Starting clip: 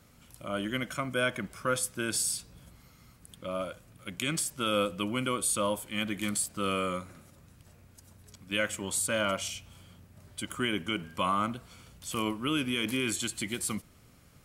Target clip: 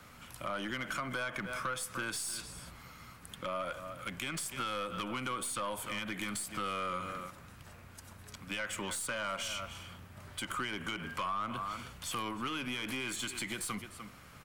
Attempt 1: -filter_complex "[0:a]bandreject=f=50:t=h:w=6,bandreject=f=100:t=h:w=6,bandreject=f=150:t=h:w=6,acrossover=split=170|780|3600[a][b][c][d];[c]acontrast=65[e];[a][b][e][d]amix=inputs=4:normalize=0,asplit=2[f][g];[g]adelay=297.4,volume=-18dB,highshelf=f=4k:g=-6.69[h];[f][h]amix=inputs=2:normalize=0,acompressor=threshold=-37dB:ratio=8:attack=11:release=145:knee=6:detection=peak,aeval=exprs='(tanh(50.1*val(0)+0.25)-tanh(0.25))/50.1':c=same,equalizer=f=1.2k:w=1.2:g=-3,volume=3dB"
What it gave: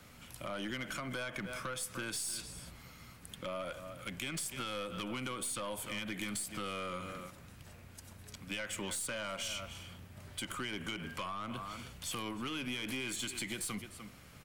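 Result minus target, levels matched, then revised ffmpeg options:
1000 Hz band -4.0 dB
-filter_complex "[0:a]bandreject=f=50:t=h:w=6,bandreject=f=100:t=h:w=6,bandreject=f=150:t=h:w=6,acrossover=split=170|780|3600[a][b][c][d];[c]acontrast=65[e];[a][b][e][d]amix=inputs=4:normalize=0,asplit=2[f][g];[g]adelay=297.4,volume=-18dB,highshelf=f=4k:g=-6.69[h];[f][h]amix=inputs=2:normalize=0,acompressor=threshold=-37dB:ratio=8:attack=11:release=145:knee=6:detection=peak,aeval=exprs='(tanh(50.1*val(0)+0.25)-tanh(0.25))/50.1':c=same,equalizer=f=1.2k:w=1.2:g=3.5,volume=3dB"

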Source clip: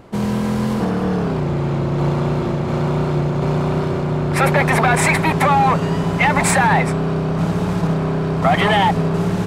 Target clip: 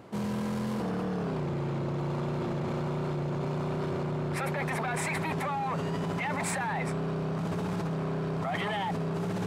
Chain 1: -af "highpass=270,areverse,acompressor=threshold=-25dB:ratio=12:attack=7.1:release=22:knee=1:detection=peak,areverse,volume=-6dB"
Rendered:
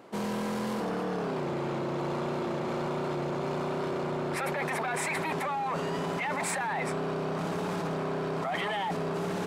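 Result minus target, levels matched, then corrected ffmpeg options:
125 Hz band -5.5 dB
-af "highpass=99,areverse,acompressor=threshold=-25dB:ratio=12:attack=7.1:release=22:knee=1:detection=peak,areverse,volume=-6dB"

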